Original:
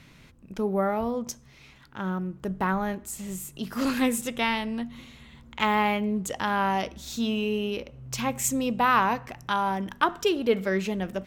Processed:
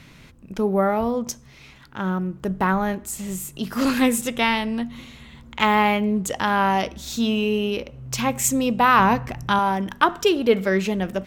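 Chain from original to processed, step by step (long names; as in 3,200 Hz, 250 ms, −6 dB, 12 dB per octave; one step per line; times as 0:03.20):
0:08.99–0:09.59: low-shelf EQ 230 Hz +10.5 dB
level +5.5 dB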